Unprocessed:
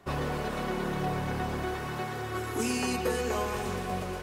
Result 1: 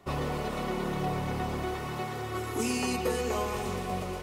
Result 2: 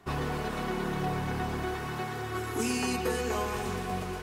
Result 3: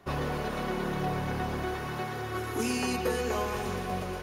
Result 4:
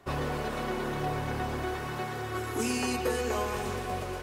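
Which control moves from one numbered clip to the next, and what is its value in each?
notch filter, centre frequency: 1,600, 560, 7,900, 180 Hertz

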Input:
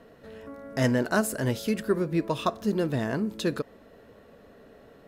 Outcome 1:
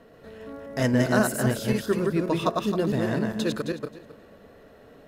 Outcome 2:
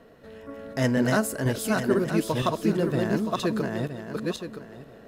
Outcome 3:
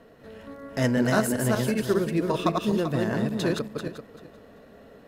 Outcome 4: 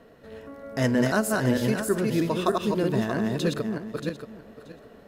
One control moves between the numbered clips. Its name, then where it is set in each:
feedback delay that plays each chunk backwards, delay time: 133, 485, 194, 315 milliseconds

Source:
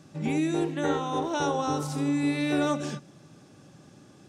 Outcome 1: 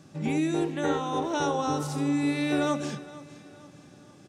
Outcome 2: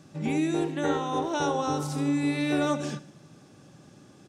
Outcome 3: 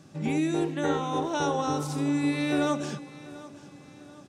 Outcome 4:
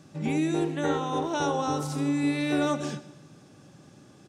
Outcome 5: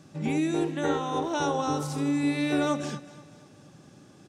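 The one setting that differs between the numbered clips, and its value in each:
repeating echo, delay time: 465, 74, 739, 128, 241 milliseconds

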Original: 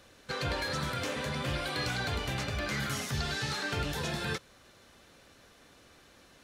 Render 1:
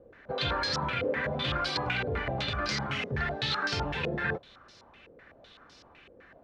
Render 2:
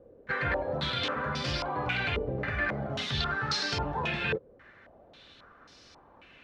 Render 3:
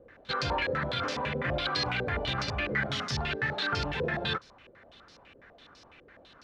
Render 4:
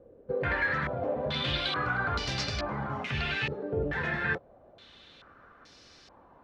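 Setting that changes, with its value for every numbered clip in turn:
low-pass on a step sequencer, speed: 7.9, 3.7, 12, 2.3 Hertz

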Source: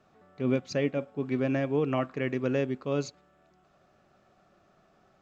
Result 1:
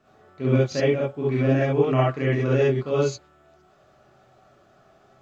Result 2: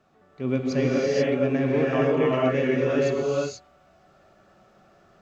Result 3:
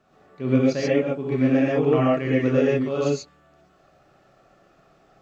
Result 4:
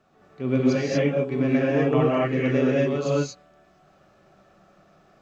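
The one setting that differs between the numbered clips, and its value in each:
reverb whose tail is shaped and stops, gate: 90, 510, 160, 260 milliseconds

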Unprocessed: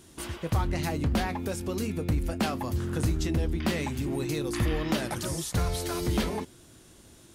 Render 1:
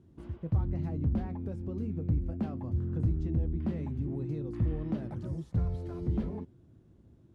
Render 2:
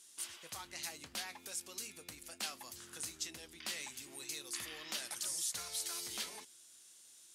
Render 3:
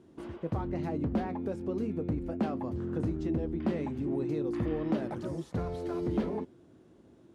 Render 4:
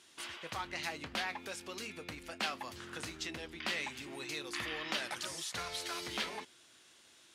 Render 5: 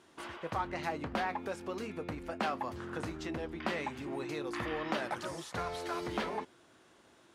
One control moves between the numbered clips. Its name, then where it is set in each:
resonant band-pass, frequency: 110, 7,900, 320, 2,800, 1,100 Hertz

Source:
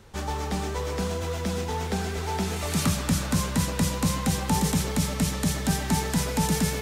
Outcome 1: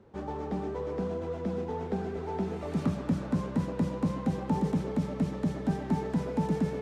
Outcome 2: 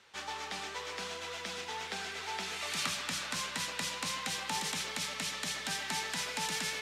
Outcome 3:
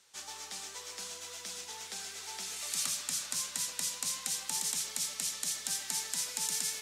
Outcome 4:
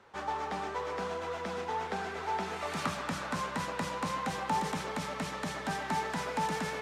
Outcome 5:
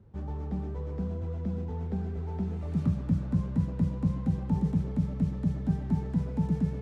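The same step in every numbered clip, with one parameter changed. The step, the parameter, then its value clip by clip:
resonant band-pass, frequency: 330, 2,800, 7,200, 1,100, 120 Hertz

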